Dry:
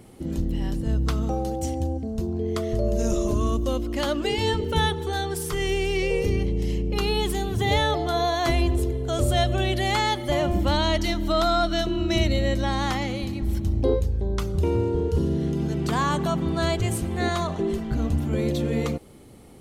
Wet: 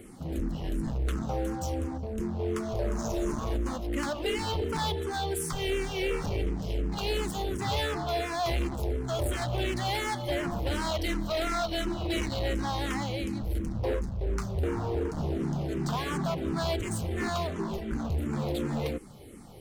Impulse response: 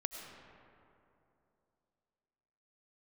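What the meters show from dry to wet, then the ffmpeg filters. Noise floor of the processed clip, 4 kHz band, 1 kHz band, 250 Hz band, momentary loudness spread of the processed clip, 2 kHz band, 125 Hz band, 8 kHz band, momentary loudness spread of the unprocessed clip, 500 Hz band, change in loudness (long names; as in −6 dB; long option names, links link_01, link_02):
−37 dBFS, −6.5 dB, −6.5 dB, −6.5 dB, 3 LU, −6.0 dB, −7.0 dB, −4.0 dB, 5 LU, −6.5 dB, −6.5 dB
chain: -filter_complex "[0:a]volume=24.5dB,asoftclip=hard,volume=-24.5dB,aeval=exprs='0.0631*(cos(1*acos(clip(val(0)/0.0631,-1,1)))-cos(1*PI/2))+0.00562*(cos(5*acos(clip(val(0)/0.0631,-1,1)))-cos(5*PI/2))':channel_layout=same,asplit=2[link_01][link_02];[link_02]afreqshift=-2.8[link_03];[link_01][link_03]amix=inputs=2:normalize=1"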